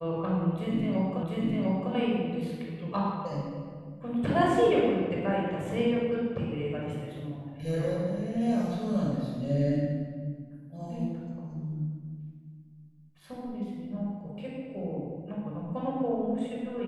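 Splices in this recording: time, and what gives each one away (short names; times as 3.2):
1.23 repeat of the last 0.7 s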